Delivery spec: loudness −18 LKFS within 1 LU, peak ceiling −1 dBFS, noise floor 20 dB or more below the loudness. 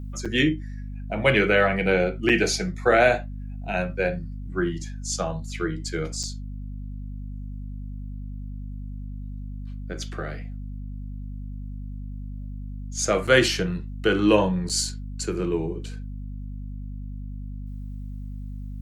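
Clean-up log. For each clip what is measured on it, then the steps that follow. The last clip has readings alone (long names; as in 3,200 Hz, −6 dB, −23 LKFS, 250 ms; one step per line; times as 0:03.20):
number of dropouts 5; longest dropout 6.2 ms; mains hum 50 Hz; hum harmonics up to 250 Hz; level of the hum −32 dBFS; integrated loudness −24.0 LKFS; sample peak −2.0 dBFS; target loudness −18.0 LKFS
→ repair the gap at 0:00.25/0:02.29/0:06.23/0:13.27/0:14.69, 6.2 ms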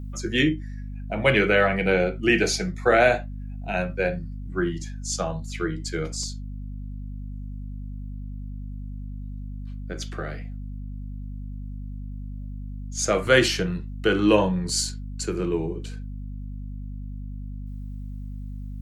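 number of dropouts 0; mains hum 50 Hz; hum harmonics up to 250 Hz; level of the hum −32 dBFS
→ mains-hum notches 50/100/150/200/250 Hz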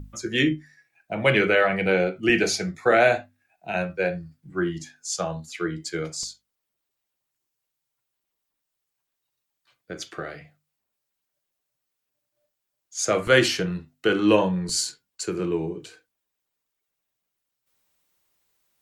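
mains hum none found; integrated loudness −24.0 LKFS; sample peak −2.5 dBFS; target loudness −18.0 LKFS
→ level +6 dB
brickwall limiter −1 dBFS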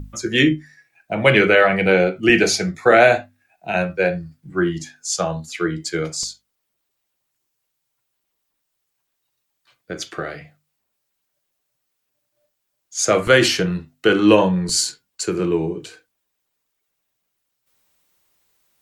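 integrated loudness −18.0 LKFS; sample peak −1.0 dBFS; background noise floor −76 dBFS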